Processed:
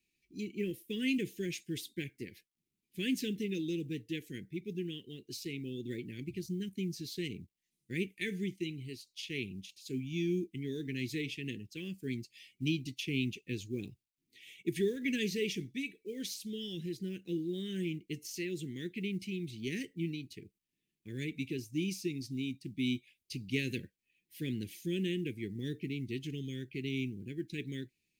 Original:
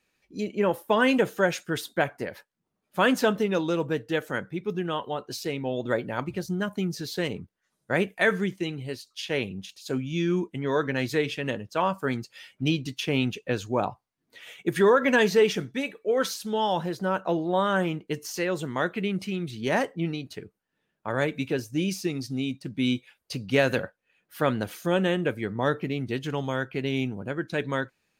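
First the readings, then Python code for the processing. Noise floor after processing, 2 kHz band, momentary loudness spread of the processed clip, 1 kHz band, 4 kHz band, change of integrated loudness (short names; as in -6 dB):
under -85 dBFS, -13.5 dB, 9 LU, under -40 dB, -8.0 dB, -11.0 dB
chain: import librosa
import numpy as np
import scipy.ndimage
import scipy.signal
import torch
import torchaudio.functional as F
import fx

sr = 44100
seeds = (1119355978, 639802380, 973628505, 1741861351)

y = fx.quant_companded(x, sr, bits=8)
y = scipy.signal.sosfilt(scipy.signal.ellip(3, 1.0, 40, [370.0, 2200.0], 'bandstop', fs=sr, output='sos'), y)
y = y * 10.0 ** (-7.0 / 20.0)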